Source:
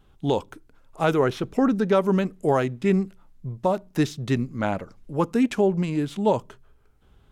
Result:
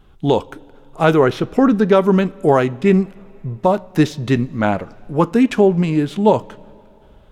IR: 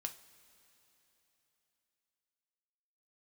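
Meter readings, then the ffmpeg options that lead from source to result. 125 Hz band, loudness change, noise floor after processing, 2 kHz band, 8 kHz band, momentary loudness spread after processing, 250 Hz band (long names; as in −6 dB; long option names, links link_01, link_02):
+7.5 dB, +7.5 dB, −47 dBFS, +7.5 dB, can't be measured, 7 LU, +7.5 dB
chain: -filter_complex "[0:a]asplit=2[link_01][link_02];[1:a]atrim=start_sample=2205,asetrate=52920,aresample=44100,lowpass=5200[link_03];[link_02][link_03]afir=irnorm=-1:irlink=0,volume=-1dB[link_04];[link_01][link_04]amix=inputs=2:normalize=0,volume=4dB"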